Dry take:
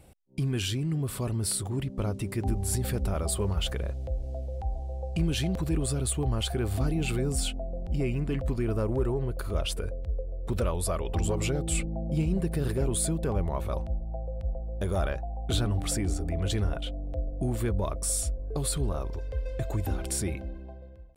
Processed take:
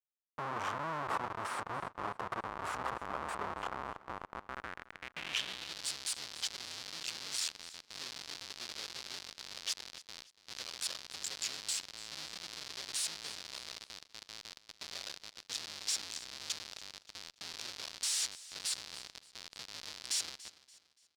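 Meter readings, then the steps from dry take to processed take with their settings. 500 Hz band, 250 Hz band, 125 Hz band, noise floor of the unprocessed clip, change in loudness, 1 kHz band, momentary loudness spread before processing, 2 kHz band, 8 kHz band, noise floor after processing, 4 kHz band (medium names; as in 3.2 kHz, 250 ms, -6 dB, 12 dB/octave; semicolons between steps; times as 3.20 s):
-16.5 dB, -22.5 dB, -28.5 dB, -41 dBFS, -9.0 dB, -0.5 dB, 7 LU, -1.0 dB, -5.5 dB, -69 dBFS, 0.0 dB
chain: resonant high shelf 5.1 kHz +6 dB, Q 3; Chebyshev shaper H 2 -25 dB, 5 -19 dB, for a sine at -10 dBFS; Schmitt trigger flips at -25 dBFS; band-pass sweep 1.1 kHz -> 4.6 kHz, 4.34–5.80 s; feedback delay 287 ms, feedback 37%, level -18 dB; trim +1.5 dB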